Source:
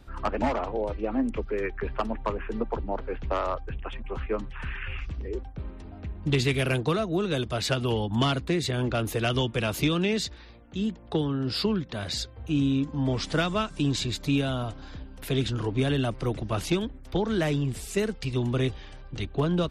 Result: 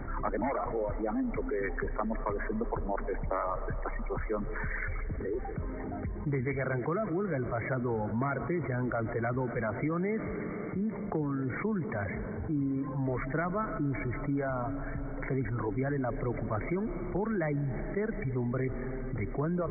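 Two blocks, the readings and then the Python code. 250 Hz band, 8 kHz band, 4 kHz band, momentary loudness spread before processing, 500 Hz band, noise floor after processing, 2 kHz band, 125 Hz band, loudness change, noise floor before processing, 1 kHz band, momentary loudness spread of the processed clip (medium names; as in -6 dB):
-4.5 dB, under -40 dB, under -40 dB, 10 LU, -3.5 dB, -38 dBFS, -3.5 dB, -5.5 dB, -5.0 dB, -45 dBFS, -3.0 dB, 5 LU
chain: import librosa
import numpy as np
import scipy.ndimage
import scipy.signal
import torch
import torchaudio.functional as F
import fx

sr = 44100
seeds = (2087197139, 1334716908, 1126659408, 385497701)

y = fx.dereverb_blind(x, sr, rt60_s=1.4)
y = fx.brickwall_lowpass(y, sr, high_hz=2300.0)
y = fx.peak_eq(y, sr, hz=62.0, db=-13.0, octaves=0.46)
y = fx.rev_freeverb(y, sr, rt60_s=3.9, hf_ratio=0.8, predelay_ms=95, drr_db=17.0)
y = fx.env_flatten(y, sr, amount_pct=70)
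y = y * librosa.db_to_amplitude(-7.5)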